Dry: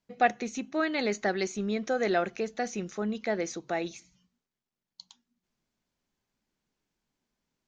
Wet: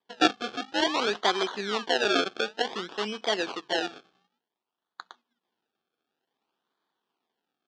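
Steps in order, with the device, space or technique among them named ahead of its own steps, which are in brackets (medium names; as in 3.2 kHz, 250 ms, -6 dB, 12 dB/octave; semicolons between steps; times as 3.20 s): circuit-bent sampling toy (decimation with a swept rate 31×, swing 100% 0.55 Hz; cabinet simulation 490–5300 Hz, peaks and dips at 580 Hz -10 dB, 2.1 kHz -7 dB, 3.3 kHz +5 dB); trim +8 dB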